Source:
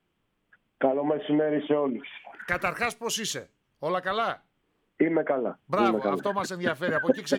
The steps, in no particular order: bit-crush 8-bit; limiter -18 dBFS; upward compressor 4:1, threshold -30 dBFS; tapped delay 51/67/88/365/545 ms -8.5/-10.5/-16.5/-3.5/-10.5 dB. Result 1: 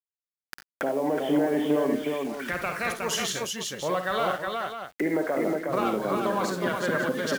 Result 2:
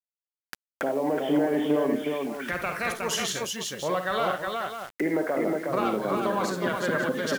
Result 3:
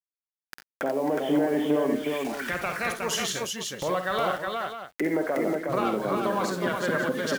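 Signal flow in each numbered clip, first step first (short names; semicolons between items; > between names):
limiter > bit-crush > tapped delay > upward compressor; limiter > tapped delay > bit-crush > upward compressor; bit-crush > upward compressor > limiter > tapped delay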